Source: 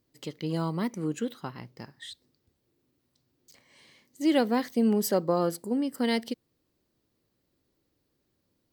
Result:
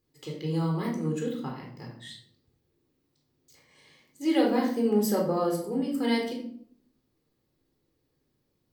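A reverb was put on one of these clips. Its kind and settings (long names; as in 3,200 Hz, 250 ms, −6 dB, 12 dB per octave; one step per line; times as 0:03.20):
rectangular room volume 920 cubic metres, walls furnished, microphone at 4 metres
level −5.5 dB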